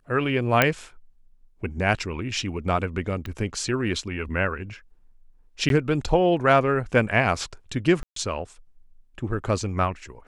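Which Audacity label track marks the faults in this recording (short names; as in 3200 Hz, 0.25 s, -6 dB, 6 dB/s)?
0.620000	0.620000	pop -3 dBFS
3.260000	3.260000	pop -21 dBFS
5.690000	5.700000	gap 12 ms
8.030000	8.160000	gap 0.133 s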